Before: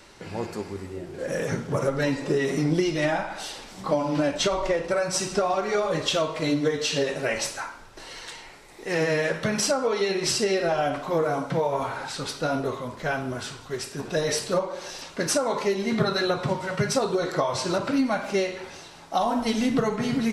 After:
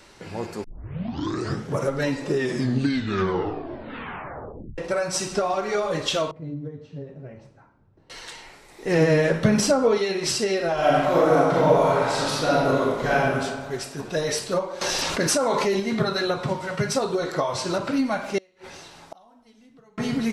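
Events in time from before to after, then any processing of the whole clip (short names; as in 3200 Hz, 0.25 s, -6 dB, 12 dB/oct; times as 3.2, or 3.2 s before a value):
0.64 tape start 1.05 s
2.3 tape stop 2.48 s
6.31–8.1 band-pass 120 Hz, Q 1.5
8.84–9.98 low shelf 490 Hz +10.5 dB
10.74–13.27 reverb throw, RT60 1.6 s, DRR -6.5 dB
14.81–15.8 fast leveller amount 70%
18.38–19.98 flipped gate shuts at -25 dBFS, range -30 dB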